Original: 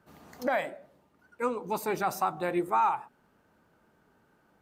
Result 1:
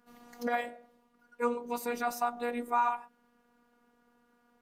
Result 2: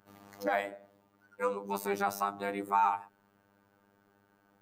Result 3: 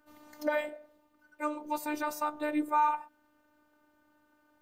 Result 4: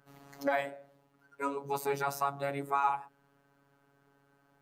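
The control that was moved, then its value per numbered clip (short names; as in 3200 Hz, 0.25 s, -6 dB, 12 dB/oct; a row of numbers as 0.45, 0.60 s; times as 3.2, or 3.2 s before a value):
robotiser, frequency: 240, 100, 300, 140 Hz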